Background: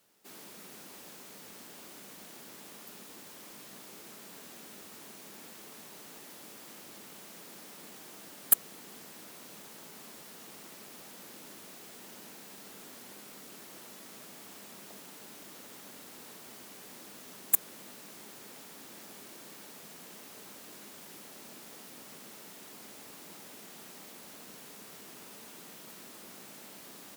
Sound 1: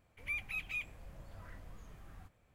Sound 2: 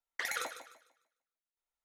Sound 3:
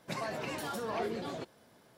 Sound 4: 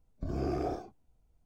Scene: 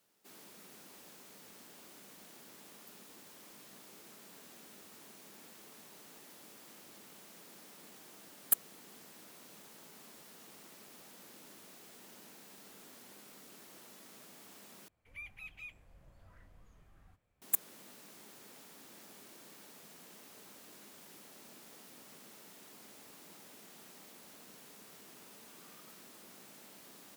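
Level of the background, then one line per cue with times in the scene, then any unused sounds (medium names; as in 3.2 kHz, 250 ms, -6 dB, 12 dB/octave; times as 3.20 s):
background -6 dB
14.88 s: replace with 1 -9 dB
25.21 s: add 4 -15 dB + elliptic high-pass 1.1 kHz
not used: 2, 3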